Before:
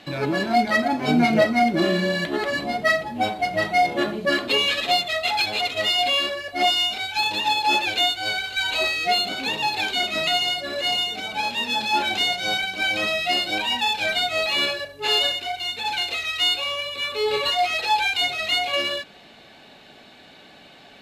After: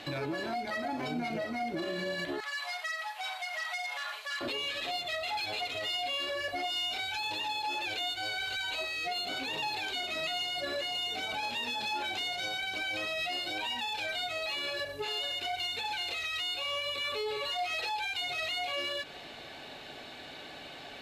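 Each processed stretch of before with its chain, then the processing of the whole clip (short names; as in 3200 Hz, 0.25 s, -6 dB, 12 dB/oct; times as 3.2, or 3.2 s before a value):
2.4–4.41 inverse Chebyshev high-pass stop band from 290 Hz, stop band 60 dB + compressor 3:1, threshold -33 dBFS + core saturation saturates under 3000 Hz
whole clip: bell 200 Hz -10.5 dB 0.36 oct; compressor 6:1, threshold -29 dBFS; limiter -29 dBFS; gain +2 dB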